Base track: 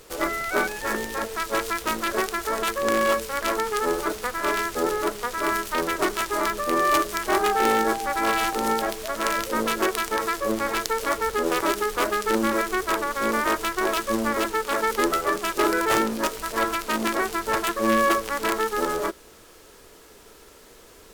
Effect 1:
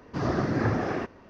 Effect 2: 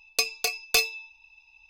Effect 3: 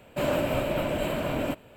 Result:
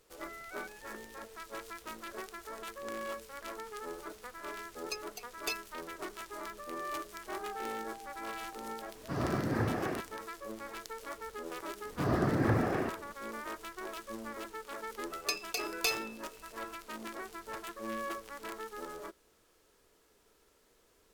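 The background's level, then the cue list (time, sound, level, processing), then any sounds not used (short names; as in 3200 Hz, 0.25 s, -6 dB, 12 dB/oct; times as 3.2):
base track -18.5 dB
4.73 add 2 -12 dB + per-bin expansion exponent 3
8.95 add 1 -6.5 dB
11.84 add 1 -3 dB + high shelf 5400 Hz -9.5 dB
15.1 add 2 -9.5 dB
not used: 3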